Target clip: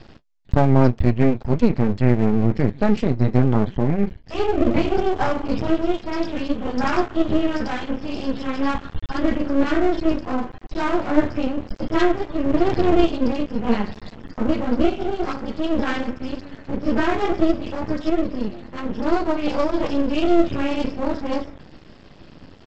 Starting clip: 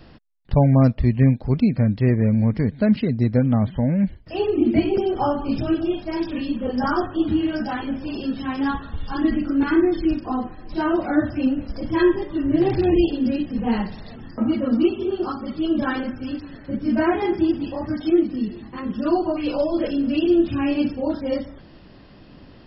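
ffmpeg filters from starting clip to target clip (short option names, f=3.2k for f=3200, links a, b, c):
-af "flanger=delay=8.8:depth=7:regen=-46:speed=0.17:shape=triangular,aresample=16000,aeval=exprs='max(val(0),0)':c=same,aresample=44100,volume=8.5dB"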